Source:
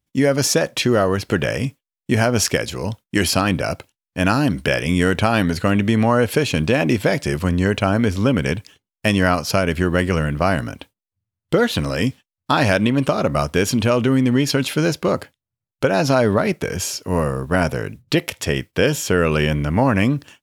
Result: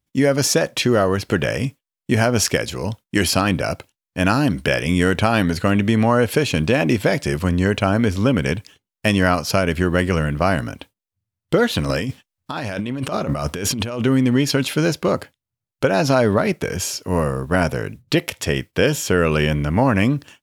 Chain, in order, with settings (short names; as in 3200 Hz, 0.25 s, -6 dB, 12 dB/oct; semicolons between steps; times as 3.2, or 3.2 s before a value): 11.89–14.02 negative-ratio compressor -24 dBFS, ratio -1